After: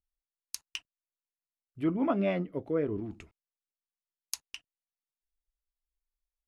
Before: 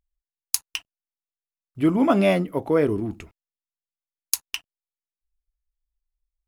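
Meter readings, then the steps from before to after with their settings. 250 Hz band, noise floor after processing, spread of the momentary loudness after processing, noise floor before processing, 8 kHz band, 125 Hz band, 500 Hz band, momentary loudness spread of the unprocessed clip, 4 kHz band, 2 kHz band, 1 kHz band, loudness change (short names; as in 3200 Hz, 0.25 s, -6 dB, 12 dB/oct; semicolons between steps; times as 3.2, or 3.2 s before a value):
-9.5 dB, under -85 dBFS, 16 LU, under -85 dBFS, -13.5 dB, -9.5 dB, -10.0 dB, 16 LU, -11.0 dB, -11.5 dB, -11.0 dB, -10.5 dB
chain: treble ducked by the level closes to 2700 Hz, closed at -18 dBFS; rotary speaker horn 7.5 Hz, later 1 Hz, at 1.59; gain -8 dB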